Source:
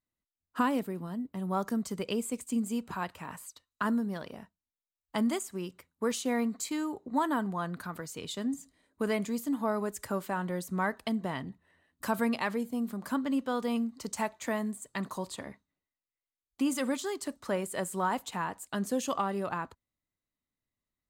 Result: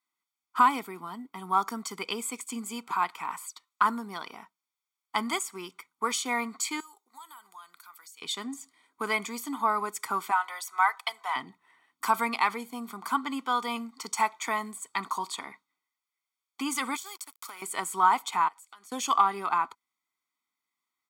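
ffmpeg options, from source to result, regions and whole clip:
ffmpeg -i in.wav -filter_complex "[0:a]asettb=1/sr,asplit=3[link_01][link_02][link_03];[link_01]atrim=end=6.804[link_04];[link_02]atrim=start=6.8:end=8.22,asetpts=PTS-STARTPTS,afade=type=in:duration=0.004:curve=qsin,afade=type=out:start_time=1.416:duration=0.004:curve=qsin,aderivative,acompressor=threshold=-53dB:ratio=4:attack=3.2:release=140:knee=1:detection=peak[link_05];[link_03]atrim=start=8.216[link_06];[link_04][link_05]acrossfade=duration=0.004:curve1=hsin:curve2=qsin[link_07];[link_07][link_06]acrossfade=duration=0.004:curve1=qsin:curve2=hsin,asettb=1/sr,asplit=3[link_08][link_09][link_10];[link_08]atrim=end=10.314[link_11];[link_09]atrim=start=10.31:end=11.36,asetpts=PTS-STARTPTS,afade=type=in:duration=0.004:curve=qsin,afade=type=out:start_time=1.046:duration=0.004:curve=qsin,highpass=frequency=650:width=0.5412,highpass=frequency=650:width=1.3066,aecho=1:1:4:0.46,atrim=end_sample=46305[link_12];[link_10]atrim=start=11.356[link_13];[link_11][link_12]acrossfade=duration=0.004:curve1=hsin:curve2=qsin[link_14];[link_14][link_13]acrossfade=duration=0.004:curve1=qsin:curve2=hsin,asettb=1/sr,asplit=3[link_15][link_16][link_17];[link_15]atrim=end=16.964[link_18];[link_16]atrim=start=16.96:end=17.62,asetpts=PTS-STARTPTS,afade=type=in:duration=0.004:curve=qsin,afade=type=out:start_time=0.656:duration=0.004:curve=qsin,aemphasis=mode=production:type=riaa,acompressor=threshold=-40dB:ratio=12:attack=3.2:release=140:knee=1:detection=peak,aeval=exprs='sgn(val(0))*max(abs(val(0))-0.00224,0)':channel_layout=same[link_19];[link_17]atrim=start=17.616[link_20];[link_18][link_19]acrossfade=duration=0.004:curve1=hsin:curve2=qsin[link_21];[link_21][link_20]acrossfade=duration=0.004:curve1=qsin:curve2=hsin,asettb=1/sr,asplit=3[link_22][link_23][link_24];[link_22]atrim=end=18.484[link_25];[link_23]atrim=start=18.48:end=18.92,asetpts=PTS-STARTPTS,afade=type=in:duration=0.004:curve=qsin,afade=type=out:start_time=0.436:duration=0.004:curve=qsin,highpass=frequency=1400:poles=1,acompressor=threshold=-54dB:ratio=6:attack=3.2:release=140:knee=1:detection=peak[link_26];[link_24]atrim=start=18.916[link_27];[link_25][link_26]acrossfade=duration=0.004:curve1=hsin:curve2=qsin[link_28];[link_28][link_27]acrossfade=duration=0.004:curve1=qsin:curve2=hsin,highpass=610,highshelf=frequency=6700:gain=-6.5,aecho=1:1:0.9:0.9,volume=6.5dB" out.wav

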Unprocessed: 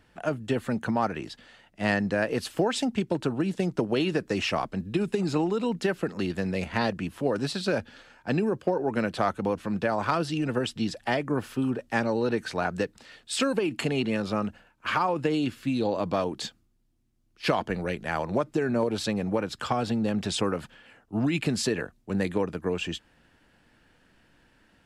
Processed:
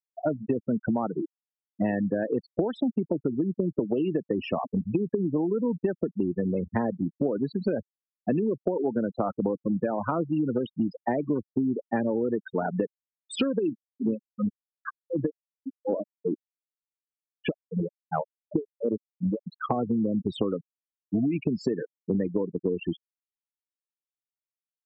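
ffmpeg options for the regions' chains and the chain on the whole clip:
ffmpeg -i in.wav -filter_complex "[0:a]asettb=1/sr,asplit=3[link_01][link_02][link_03];[link_01]atrim=end=13.734[link_04];[link_02]atrim=start=13.73:end=19.47,asetpts=PTS-STARTPTS,afade=type=in:duration=0.004:curve=qsin,afade=type=out:start_time=5.736:duration=0.004:curve=qsin,aecho=1:1:116:0.141,atrim=end_sample=253134,aeval=exprs='val(0)*pow(10,-29*(0.5-0.5*cos(2*PI*2.7*n/s))/20)':channel_layout=same[link_05];[link_03]atrim=start=19.466[link_06];[link_04][link_05]acrossfade=duration=0.004:curve1=hsin:curve2=qsin[link_07];[link_07][link_06]acrossfade=duration=0.004:curve1=qsin:curve2=hsin,afftfilt=real='re*gte(hypot(re,im),0.0891)':imag='im*gte(hypot(re,im),0.0891)':win_size=1024:overlap=0.75,equalizer=frequency=310:width=0.39:gain=14.5,acompressor=threshold=-24dB:ratio=6" out.wav

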